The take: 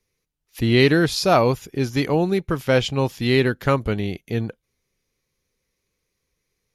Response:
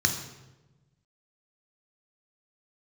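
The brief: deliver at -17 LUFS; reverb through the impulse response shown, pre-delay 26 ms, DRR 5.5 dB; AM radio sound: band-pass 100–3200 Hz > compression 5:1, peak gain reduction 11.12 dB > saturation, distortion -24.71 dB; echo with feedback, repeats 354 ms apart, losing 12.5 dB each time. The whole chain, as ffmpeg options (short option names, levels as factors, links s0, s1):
-filter_complex "[0:a]aecho=1:1:354|708|1062:0.237|0.0569|0.0137,asplit=2[s0][s1];[1:a]atrim=start_sample=2205,adelay=26[s2];[s1][s2]afir=irnorm=-1:irlink=0,volume=0.15[s3];[s0][s3]amix=inputs=2:normalize=0,highpass=100,lowpass=3200,acompressor=threshold=0.0794:ratio=5,asoftclip=threshold=0.188,volume=3.16"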